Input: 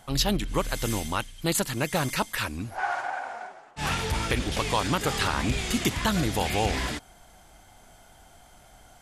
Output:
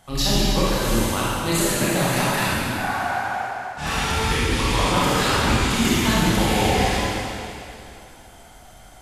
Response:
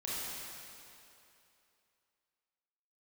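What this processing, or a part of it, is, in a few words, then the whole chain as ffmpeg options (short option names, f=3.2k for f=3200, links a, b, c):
stairwell: -filter_complex "[1:a]atrim=start_sample=2205[a];[0:a][a]afir=irnorm=-1:irlink=0,asettb=1/sr,asplit=3[b][c][d];[b]atrim=end=4.304[e];[c]atrim=start=4.3:end=4.79,asetpts=PTS-STARTPTS,afade=t=in:d=0.004:c=qsin,afade=t=out:st=0.486:d=0.004:c=qsin,equalizer=f=620:t=o:w=0.36:g=-10[f];[d]atrim=start=4.786[g];[e][f]acrossfade=d=0.004:c1=hsin:c2=qsin[h];[h][g]acrossfade=d=0.004:c1=qsin:c2=hsin,volume=3.5dB"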